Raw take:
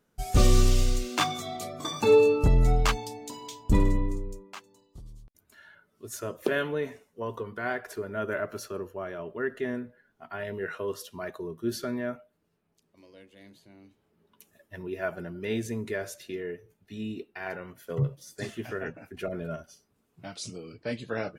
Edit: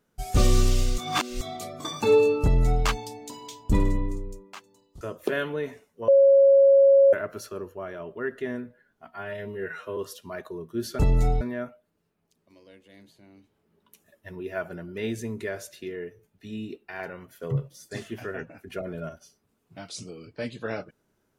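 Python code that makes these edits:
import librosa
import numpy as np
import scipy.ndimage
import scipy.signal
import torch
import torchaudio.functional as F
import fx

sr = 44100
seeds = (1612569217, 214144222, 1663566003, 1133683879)

y = fx.edit(x, sr, fx.reverse_span(start_s=0.98, length_s=0.43),
    fx.duplicate(start_s=2.43, length_s=0.42, to_s=11.88),
    fx.cut(start_s=5.01, length_s=1.19),
    fx.bleep(start_s=7.27, length_s=1.05, hz=550.0, db=-12.5),
    fx.stretch_span(start_s=10.26, length_s=0.6, factor=1.5), tone=tone)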